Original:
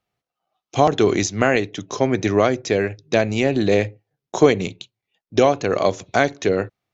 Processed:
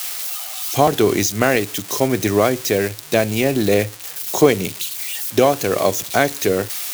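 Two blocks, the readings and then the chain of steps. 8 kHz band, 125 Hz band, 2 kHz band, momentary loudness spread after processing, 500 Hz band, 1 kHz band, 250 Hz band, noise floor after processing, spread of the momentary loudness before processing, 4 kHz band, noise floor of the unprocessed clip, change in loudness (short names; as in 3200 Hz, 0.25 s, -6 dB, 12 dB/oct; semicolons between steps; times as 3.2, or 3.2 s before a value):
n/a, +1.0 dB, +1.5 dB, 8 LU, +1.0 dB, +1.0 dB, +1.0 dB, -35 dBFS, 7 LU, +5.0 dB, under -85 dBFS, +1.5 dB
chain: switching spikes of -17 dBFS; gain +1 dB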